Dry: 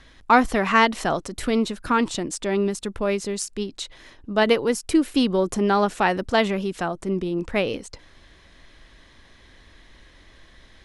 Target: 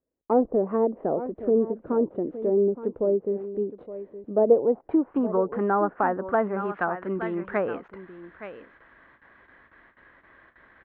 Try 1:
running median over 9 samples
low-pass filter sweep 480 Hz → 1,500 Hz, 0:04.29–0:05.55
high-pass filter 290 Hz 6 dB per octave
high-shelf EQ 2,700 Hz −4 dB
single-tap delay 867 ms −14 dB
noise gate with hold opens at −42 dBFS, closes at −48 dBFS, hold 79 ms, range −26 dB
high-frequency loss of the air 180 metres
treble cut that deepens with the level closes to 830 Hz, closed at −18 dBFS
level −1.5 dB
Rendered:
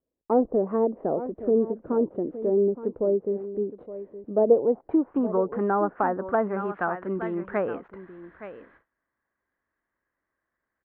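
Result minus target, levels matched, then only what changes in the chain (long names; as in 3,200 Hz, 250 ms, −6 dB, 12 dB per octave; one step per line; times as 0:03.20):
4,000 Hz band −5.0 dB
change: high-shelf EQ 2,700 Hz +7.5 dB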